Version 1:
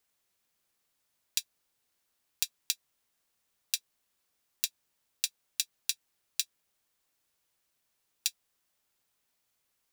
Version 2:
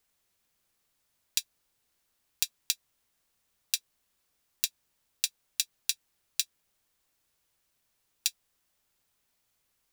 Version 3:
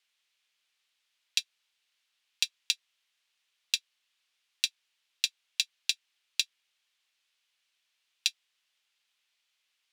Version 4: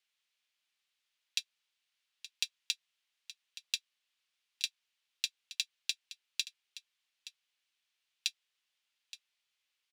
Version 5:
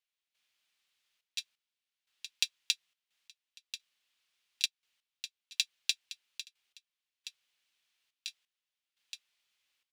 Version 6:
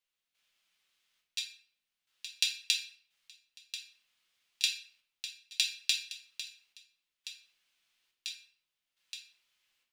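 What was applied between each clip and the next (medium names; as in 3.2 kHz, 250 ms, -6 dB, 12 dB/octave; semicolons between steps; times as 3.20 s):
bass shelf 110 Hz +7.5 dB; trim +2 dB
band-pass filter 3 kHz, Q 1.6; trim +7 dB
delay 872 ms -15 dB; trim -6 dB
trance gate "..xxxxx.x." 87 bpm -12 dB; trim +4 dB
reverberation RT60 0.60 s, pre-delay 6 ms, DRR -0.5 dB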